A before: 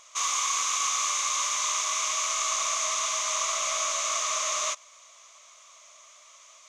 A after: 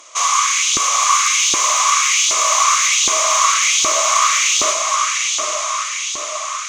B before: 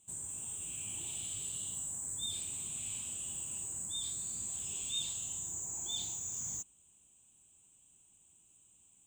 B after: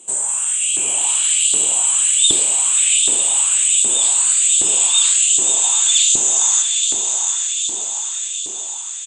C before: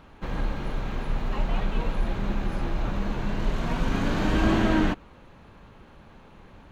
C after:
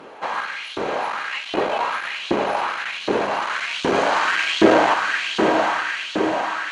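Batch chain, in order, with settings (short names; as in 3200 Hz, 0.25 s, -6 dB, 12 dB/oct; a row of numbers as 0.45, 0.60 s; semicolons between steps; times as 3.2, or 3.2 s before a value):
octaver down 1 oct, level 0 dB; diffused feedback echo 0.833 s, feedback 56%, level -4.5 dB; downsampling 22050 Hz; added harmonics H 5 -12 dB, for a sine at -6.5 dBFS; notch 3600 Hz, Q 23; on a send: echo with dull and thin repeats by turns 0.267 s, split 1000 Hz, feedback 84%, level -10 dB; on the sum: LFO high-pass saw up 1.3 Hz 340–3700 Hz; normalise peaks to -1.5 dBFS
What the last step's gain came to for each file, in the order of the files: +3.0, +16.0, +3.5 dB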